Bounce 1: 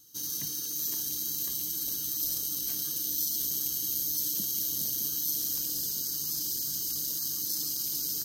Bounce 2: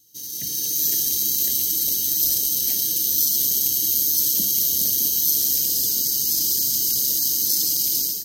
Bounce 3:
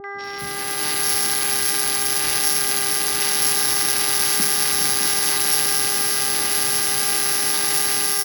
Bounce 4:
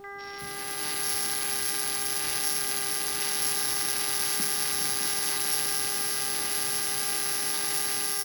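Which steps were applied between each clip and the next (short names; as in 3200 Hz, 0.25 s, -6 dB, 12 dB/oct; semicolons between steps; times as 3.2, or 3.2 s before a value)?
Chebyshev band-stop 700–1800 Hz, order 3; notches 50/100/150/200/250/300 Hz; AGC gain up to 12 dB
sample sorter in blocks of 8 samples; buzz 400 Hz, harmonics 5, -35 dBFS 0 dB/oct; three bands offset in time lows, mids, highs 40/240 ms, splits 760/5100 Hz; gain +3.5 dB
added noise pink -53 dBFS; gain -8.5 dB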